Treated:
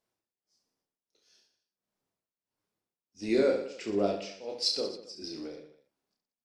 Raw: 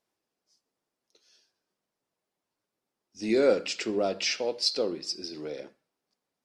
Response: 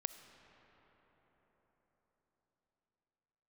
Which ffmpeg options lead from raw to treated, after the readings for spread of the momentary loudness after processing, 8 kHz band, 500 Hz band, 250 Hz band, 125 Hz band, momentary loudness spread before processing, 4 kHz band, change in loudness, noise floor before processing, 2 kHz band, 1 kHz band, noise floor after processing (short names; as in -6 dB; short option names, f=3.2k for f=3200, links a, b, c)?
15 LU, -7.0 dB, -3.0 dB, -1.5 dB, 0.0 dB, 14 LU, -3.5 dB, -3.0 dB, under -85 dBFS, -7.5 dB, -3.0 dB, under -85 dBFS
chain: -filter_complex "[0:a]lowshelf=f=170:g=6,tremolo=f=1.5:d=0.93,asplit=2[a][b];[b]aecho=0:1:30|69|119.7|185.6|271.3:0.631|0.398|0.251|0.158|0.1[c];[a][c]amix=inputs=2:normalize=0,volume=-3.5dB"